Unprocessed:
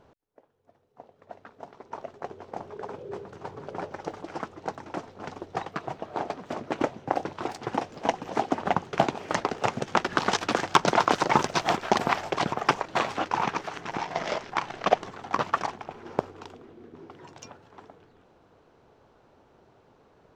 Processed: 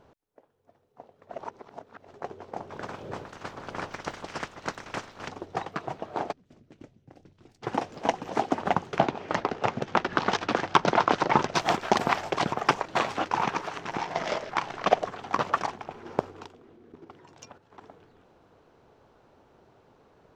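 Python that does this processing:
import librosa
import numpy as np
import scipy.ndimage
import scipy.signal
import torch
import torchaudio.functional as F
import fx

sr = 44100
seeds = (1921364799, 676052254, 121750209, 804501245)

y = fx.spec_clip(x, sr, under_db=17, at=(2.69, 5.27), fade=0.02)
y = fx.tone_stack(y, sr, knobs='10-0-1', at=(6.31, 7.62), fade=0.02)
y = fx.air_absorb(y, sr, metres=110.0, at=(8.98, 11.55))
y = fx.echo_stepped(y, sr, ms=106, hz=510.0, octaves=1.4, feedback_pct=70, wet_db=-9.5, at=(13.46, 15.55), fade=0.02)
y = fx.level_steps(y, sr, step_db=9, at=(16.45, 17.82), fade=0.02)
y = fx.edit(y, sr, fx.reverse_span(start_s=1.33, length_s=0.76), tone=tone)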